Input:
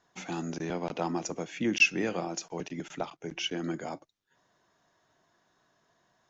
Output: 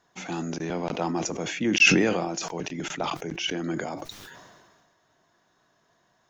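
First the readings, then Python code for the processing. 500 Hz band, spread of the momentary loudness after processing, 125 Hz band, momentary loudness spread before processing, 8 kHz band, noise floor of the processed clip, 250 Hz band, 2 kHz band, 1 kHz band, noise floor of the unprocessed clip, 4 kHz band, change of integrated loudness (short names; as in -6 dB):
+5.5 dB, 17 LU, +6.5 dB, 15 LU, n/a, -68 dBFS, +6.0 dB, +5.5 dB, +5.5 dB, -72 dBFS, +7.5 dB, +6.0 dB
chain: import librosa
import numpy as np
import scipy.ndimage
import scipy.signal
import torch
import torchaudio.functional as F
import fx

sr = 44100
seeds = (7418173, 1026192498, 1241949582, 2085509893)

y = fx.sustainer(x, sr, db_per_s=34.0)
y = y * librosa.db_to_amplitude(3.0)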